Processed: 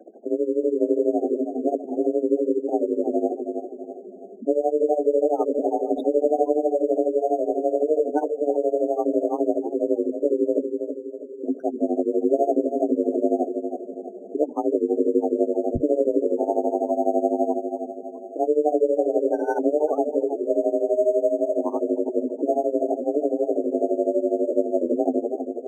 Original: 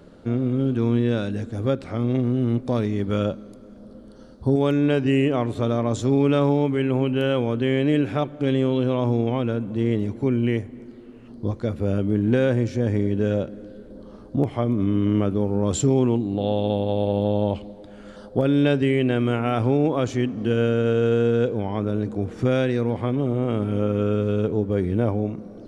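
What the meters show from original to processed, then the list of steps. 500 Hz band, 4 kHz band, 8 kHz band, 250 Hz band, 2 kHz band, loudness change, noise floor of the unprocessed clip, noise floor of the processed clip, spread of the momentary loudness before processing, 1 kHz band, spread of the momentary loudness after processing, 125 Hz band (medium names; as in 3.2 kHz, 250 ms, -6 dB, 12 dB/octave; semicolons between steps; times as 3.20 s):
+3.0 dB, under -25 dB, under -10 dB, -3.0 dB, under -15 dB, -0.5 dB, -44 dBFS, -39 dBFS, 8 LU, +3.5 dB, 9 LU, -28.0 dB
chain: resonances exaggerated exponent 1.5; high-pass 48 Hz; in parallel at +2 dB: peak limiter -18 dBFS, peak gain reduction 10.5 dB; on the sum: tremolo 12 Hz, depth 88%; frequency shift +160 Hz; on a send: filtered feedback delay 324 ms, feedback 43%, low-pass 2.9 kHz, level -7 dB; on the sum: spectral gate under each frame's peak -15 dB strong; decimation joined by straight lines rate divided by 6×; trim -2 dB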